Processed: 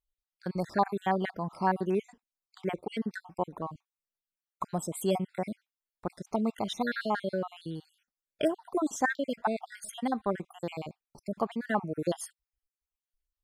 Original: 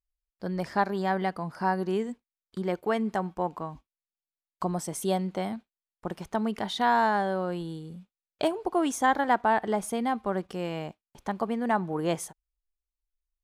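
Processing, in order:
time-frequency cells dropped at random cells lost 53%

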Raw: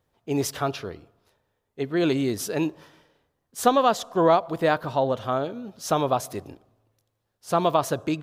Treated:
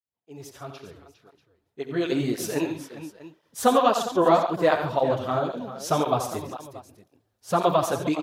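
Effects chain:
fade in at the beginning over 2.67 s
multi-tap delay 64/86/137/402/640 ms −14.5/−8.5/−12.5/−13/−19 dB
through-zero flanger with one copy inverted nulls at 1.9 Hz, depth 7.3 ms
level +2 dB

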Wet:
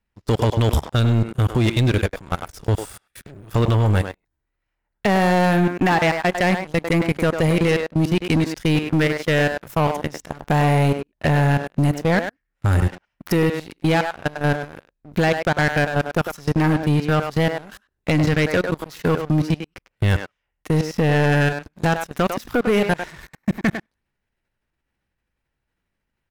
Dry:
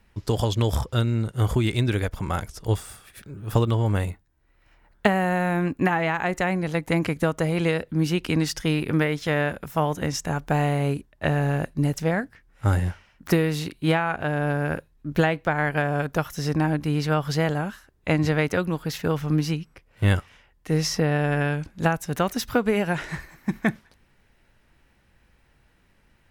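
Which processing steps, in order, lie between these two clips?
output level in coarse steps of 24 dB
far-end echo of a speakerphone 100 ms, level −9 dB
leveller curve on the samples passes 3

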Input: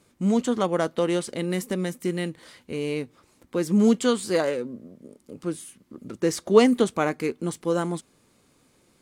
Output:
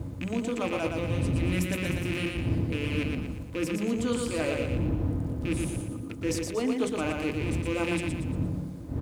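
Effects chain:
loose part that buzzes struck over −34 dBFS, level −19 dBFS
wind on the microphone 120 Hz −21 dBFS
high-pass filter 84 Hz 12 dB per octave
on a send at −8 dB: convolution reverb RT60 0.35 s, pre-delay 3 ms
on the sum: reversed playback
downward compressor, threshold −27 dBFS, peak gain reduction 16.5 dB
reversed playback
bit reduction 11 bits
repeating echo 117 ms, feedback 43%, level −4 dB

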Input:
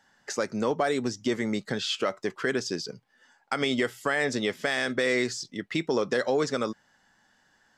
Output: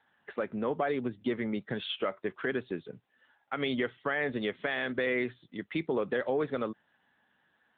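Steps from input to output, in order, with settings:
level −4 dB
AMR narrowband 10.2 kbit/s 8,000 Hz

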